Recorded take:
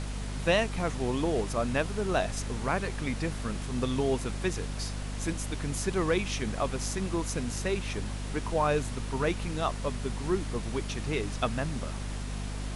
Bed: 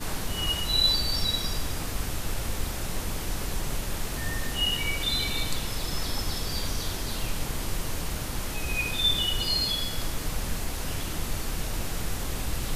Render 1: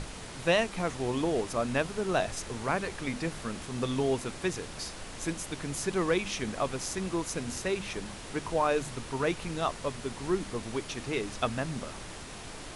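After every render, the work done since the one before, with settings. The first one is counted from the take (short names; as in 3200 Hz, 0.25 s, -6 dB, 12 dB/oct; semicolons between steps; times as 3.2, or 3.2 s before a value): notches 50/100/150/200/250 Hz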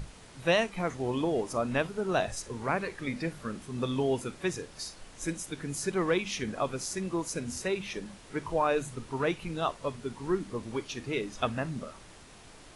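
noise print and reduce 9 dB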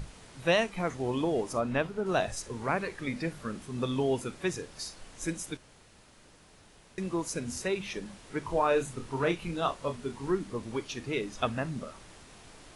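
1.59–2.05 high shelf 6500 Hz -> 4000 Hz -9.5 dB; 5.57–6.98 room tone; 8.45–10.31 doubler 29 ms -7 dB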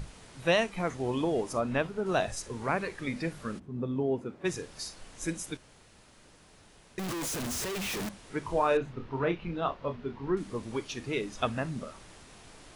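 3.58–4.44 band-pass 140 Hz -> 390 Hz, Q 0.53; 6.99–8.09 infinite clipping; 8.77–10.37 air absorption 270 m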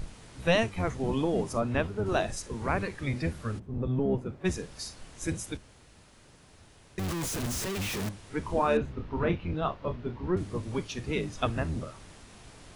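octaver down 1 oct, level +2 dB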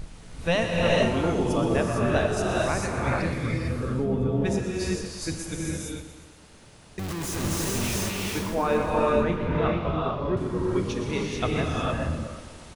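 feedback echo 0.121 s, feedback 59%, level -12 dB; non-linear reverb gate 0.48 s rising, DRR -3 dB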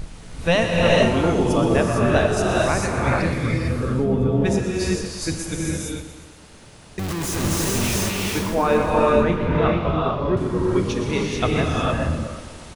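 gain +5.5 dB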